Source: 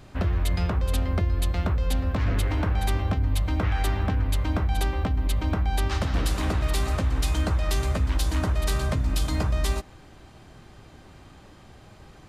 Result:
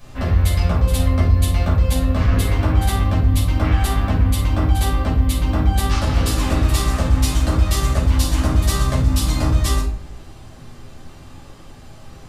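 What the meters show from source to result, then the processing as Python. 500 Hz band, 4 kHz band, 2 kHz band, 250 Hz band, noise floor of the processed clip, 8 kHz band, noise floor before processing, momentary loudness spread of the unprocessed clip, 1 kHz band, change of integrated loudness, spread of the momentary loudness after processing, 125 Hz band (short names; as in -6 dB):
+5.5 dB, +7.0 dB, +5.0 dB, +8.0 dB, -40 dBFS, +9.5 dB, -50 dBFS, 1 LU, +6.5 dB, +7.5 dB, 2 LU, +8.5 dB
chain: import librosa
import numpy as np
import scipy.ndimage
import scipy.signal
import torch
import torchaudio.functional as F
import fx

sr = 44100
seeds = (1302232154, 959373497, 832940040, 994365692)

y = fx.high_shelf(x, sr, hz=4800.0, db=9.5)
y = fx.room_shoebox(y, sr, seeds[0], volume_m3=390.0, walls='furnished', distance_m=5.7)
y = fx.doppler_dist(y, sr, depth_ms=0.11)
y = F.gain(torch.from_numpy(y), -4.0).numpy()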